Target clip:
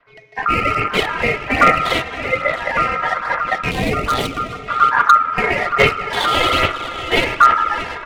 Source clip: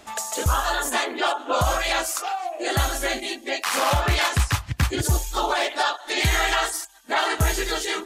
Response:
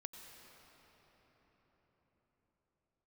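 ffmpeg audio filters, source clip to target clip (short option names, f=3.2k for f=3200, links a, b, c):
-filter_complex "[0:a]adynamicequalizer=threshold=0.0126:dfrequency=440:dqfactor=2.2:tfrequency=440:tqfactor=2.2:attack=5:release=100:ratio=0.375:range=2:mode=cutabove:tftype=bell,afwtdn=0.0708,aecho=1:1:630:0.211,asplit=2[a][b];[b]asoftclip=type=tanh:threshold=-23dB,volume=-8.5dB[c];[a][c]amix=inputs=2:normalize=0,aresample=11025,aresample=44100,asplit=2[d][e];[1:a]atrim=start_sample=2205[f];[e][f]afir=irnorm=-1:irlink=0,volume=4dB[g];[d][g]amix=inputs=2:normalize=0,adynamicsmooth=sensitivity=4.5:basefreq=1.3k,aphaser=in_gain=1:out_gain=1:delay=3.7:decay=0.57:speed=1.2:type=sinusoidal,aeval=exprs='val(0)*sin(2*PI*1300*n/s)':c=same,aeval=exprs='0.794*(abs(mod(val(0)/0.794+3,4)-2)-1)':c=same,asettb=1/sr,asplit=3[h][i][j];[h]atrim=end=3.714[k];[i]atrim=start=3.71:end=4.68,asetpts=PTS-STARTPTS,afade=t=in:d=0.004:c=qsin,afade=t=out:st=0.966:d=0.004:c=qsin,equalizer=f=1.6k:w=0.54:g=-13[l];[j]atrim=start=4.676[m];[k][l]acrossfade=d=0.004:c1=hsin:c2=qsin[n];[n][m]acrossfade=d=0.004:c1=qsin:c2=hsin,dynaudnorm=f=530:g=3:m=6dB"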